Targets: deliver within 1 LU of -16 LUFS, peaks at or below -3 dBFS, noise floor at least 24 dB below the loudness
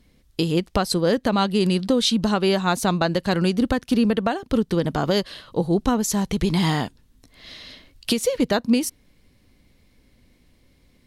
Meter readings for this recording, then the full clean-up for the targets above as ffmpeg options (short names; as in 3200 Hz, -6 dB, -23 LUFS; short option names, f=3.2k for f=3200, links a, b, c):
loudness -22.0 LUFS; peak -7.5 dBFS; loudness target -16.0 LUFS
-> -af "volume=6dB,alimiter=limit=-3dB:level=0:latency=1"